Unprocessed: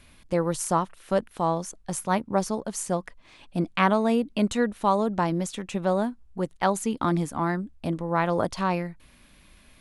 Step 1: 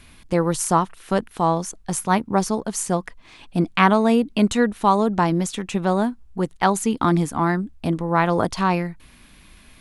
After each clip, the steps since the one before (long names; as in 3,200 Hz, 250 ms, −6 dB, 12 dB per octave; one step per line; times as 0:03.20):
parametric band 570 Hz −7 dB 0.23 octaves
level +6 dB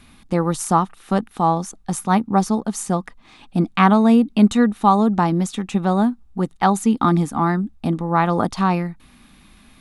hollow resonant body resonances 220/800/1,200/3,700 Hz, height 8 dB, ringing for 25 ms
level −2.5 dB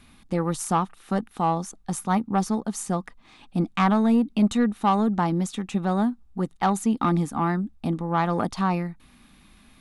soft clipping −7.5 dBFS, distortion −18 dB
level −4.5 dB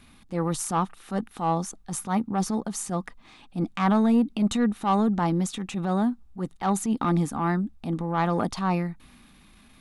transient designer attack −8 dB, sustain +2 dB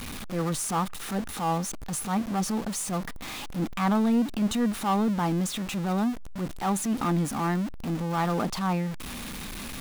converter with a step at zero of −27.5 dBFS
level −4 dB